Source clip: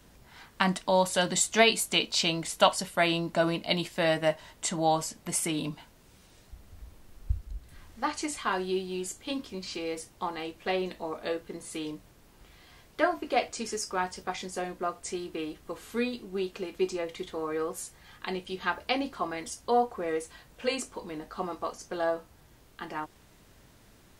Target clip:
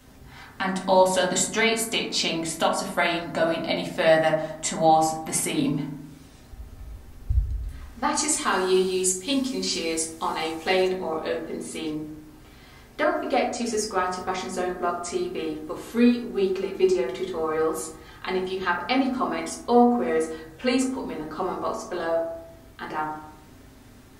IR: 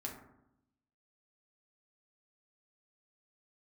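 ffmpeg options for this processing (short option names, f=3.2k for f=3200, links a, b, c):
-filter_complex "[0:a]asettb=1/sr,asplit=3[a][b][c];[a]atrim=end=8.154[d];[b]atrim=start=8.15:end=10.88,asetpts=PTS-STARTPTS,afade=t=in:d=0.004:c=qsin,afade=t=out:st=2.726:d=0.004:c=qsin,equalizer=f=8.2k:w=0.52:g=13[e];[c]atrim=start=10.876[f];[d][e]acrossfade=d=0.004:c1=hsin:c2=qsin[g];[g][f]acrossfade=d=0.004:c1=qsin:c2=hsin,alimiter=limit=-16dB:level=0:latency=1:release=287[h];[1:a]atrim=start_sample=2205[i];[h][i]afir=irnorm=-1:irlink=0,volume=7.5dB"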